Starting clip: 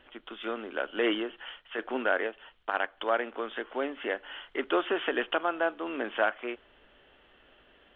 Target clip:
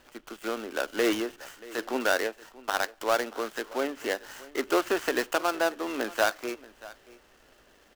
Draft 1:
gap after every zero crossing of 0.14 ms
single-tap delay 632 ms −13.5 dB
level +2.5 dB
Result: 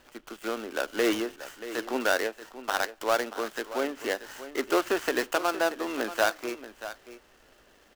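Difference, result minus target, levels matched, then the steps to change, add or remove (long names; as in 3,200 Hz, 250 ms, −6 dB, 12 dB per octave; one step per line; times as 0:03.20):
echo-to-direct +6.5 dB
change: single-tap delay 632 ms −20 dB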